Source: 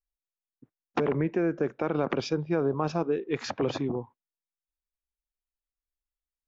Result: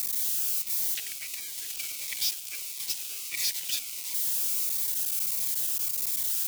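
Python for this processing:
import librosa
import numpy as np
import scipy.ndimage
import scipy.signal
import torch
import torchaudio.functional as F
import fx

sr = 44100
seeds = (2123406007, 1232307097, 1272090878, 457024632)

p1 = x + 0.5 * 10.0 ** (-23.0 / 20.0) * np.diff(np.sign(x), prepend=np.sign(x[:1]))
p2 = scipy.signal.sosfilt(scipy.signal.ellip(4, 1.0, 50, 2100.0, 'highpass', fs=sr, output='sos'), p1)
p3 = p2 + 0.38 * np.pad(p2, (int(3.1 * sr / 1000.0), 0))[:len(p2)]
p4 = fx.quant_companded(p3, sr, bits=2)
p5 = p3 + (p4 * librosa.db_to_amplitude(-9.5))
y = fx.notch_cascade(p5, sr, direction='falling', hz=1.5)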